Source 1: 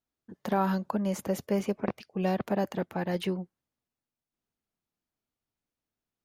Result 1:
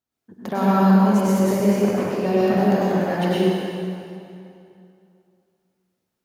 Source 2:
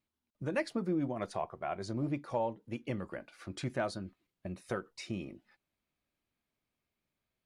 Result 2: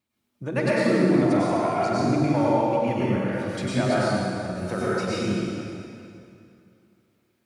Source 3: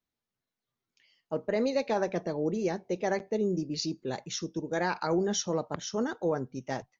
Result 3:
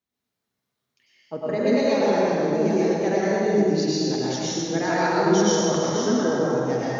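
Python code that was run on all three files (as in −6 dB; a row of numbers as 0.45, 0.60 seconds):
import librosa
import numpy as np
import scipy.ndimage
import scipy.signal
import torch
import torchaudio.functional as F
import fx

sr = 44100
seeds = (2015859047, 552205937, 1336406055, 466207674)

y = scipy.signal.sosfilt(scipy.signal.butter(2, 55.0, 'highpass', fs=sr, output='sos'), x)
y = fx.doubler(y, sr, ms=48.0, db=-13.0)
y = fx.rev_plate(y, sr, seeds[0], rt60_s=2.6, hf_ratio=0.8, predelay_ms=85, drr_db=-8.5)
y = librosa.util.normalize(y) * 10.0 ** (-6 / 20.0)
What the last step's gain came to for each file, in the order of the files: +1.0, +4.5, −0.5 decibels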